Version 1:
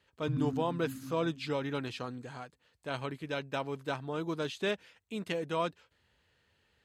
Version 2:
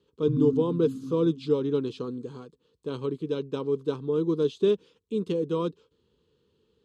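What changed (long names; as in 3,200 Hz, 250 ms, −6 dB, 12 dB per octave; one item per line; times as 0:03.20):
speech: add low-pass filter 8,300 Hz 12 dB per octave
master: add drawn EQ curve 110 Hz 0 dB, 160 Hz +8 dB, 270 Hz +8 dB, 450 Hz +14 dB, 670 Hz −14 dB, 1,100 Hz +1 dB, 1,900 Hz −18 dB, 3,400 Hz 0 dB, 4,800 Hz −3 dB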